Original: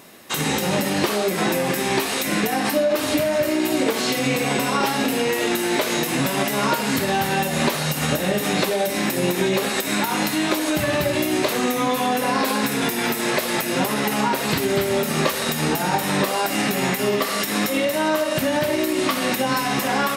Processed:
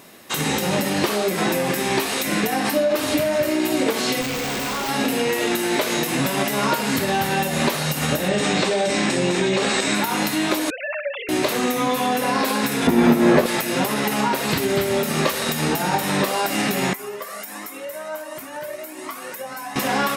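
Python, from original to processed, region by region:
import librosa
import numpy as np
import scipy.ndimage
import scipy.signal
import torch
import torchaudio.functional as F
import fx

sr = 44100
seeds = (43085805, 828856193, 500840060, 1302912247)

y = fx.chain(x, sr, fx.clip_1bit(),
    fx.peak_eq(hz=11000.0, db=-14.0, octaves=0.3),
    fx.tube_stage(drive_db=15.0, bias=0.7), at=(4.21, 4.89))
y = fx.chain(y, sr, fx.cheby1_lowpass(hz=8400.0, order=4),
    fx.env_flatten(amount_pct=70), at=(8.28, 9.95))
y = fx.chain(y, sr, fx.sine_speech(),
    fx.highpass(hz=960.0, slope=12), at=(10.7, 11.29))
y = fx.chain(y, sr, fx.tilt_shelf(db=9.5, hz=1400.0),
    fx.doubler(ms=12.0, db=-2), at=(12.87, 13.46))
y = fx.chain(y, sr, fx.highpass(hz=840.0, slope=6),
    fx.peak_eq(hz=3700.0, db=-12.5, octaves=1.7),
    fx.comb_cascade(direction='rising', hz=1.4), at=(16.93, 19.76))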